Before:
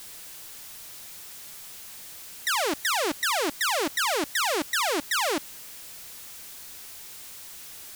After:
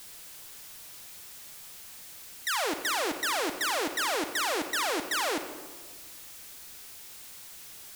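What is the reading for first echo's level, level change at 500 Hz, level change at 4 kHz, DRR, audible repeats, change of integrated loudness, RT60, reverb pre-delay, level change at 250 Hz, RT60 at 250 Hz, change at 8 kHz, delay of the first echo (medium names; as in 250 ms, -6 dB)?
no echo, -3.5 dB, -3.5 dB, 7.5 dB, no echo, -3.5 dB, 1.4 s, 38 ms, -3.0 dB, 1.7 s, -3.5 dB, no echo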